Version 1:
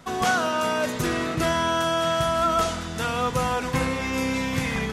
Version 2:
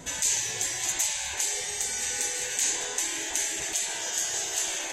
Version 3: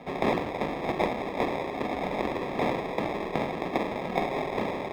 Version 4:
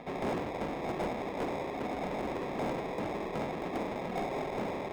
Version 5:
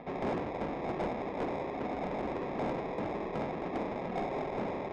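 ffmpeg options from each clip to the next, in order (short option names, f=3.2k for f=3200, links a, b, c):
-af "afftfilt=real='re*lt(hypot(re,im),0.0501)':imag='im*lt(hypot(re,im),0.0501)':win_size=1024:overlap=0.75,superequalizer=6b=1.58:7b=1.41:10b=0.316:15b=3.55,volume=3.5dB"
-filter_complex "[0:a]acrusher=samples=30:mix=1:aa=0.000001,acrossover=split=160 3600:gain=0.224 1 0.0891[a][b][c];[a][b][c]amix=inputs=3:normalize=0,volume=1.5dB"
-filter_complex "[0:a]acrossover=split=4500[a][b];[a]acompressor=mode=upward:threshold=-44dB:ratio=2.5[c];[c][b]amix=inputs=2:normalize=0,asoftclip=type=tanh:threshold=-25dB,volume=-2.5dB"
-af "adynamicsmooth=sensitivity=3:basefreq=3k"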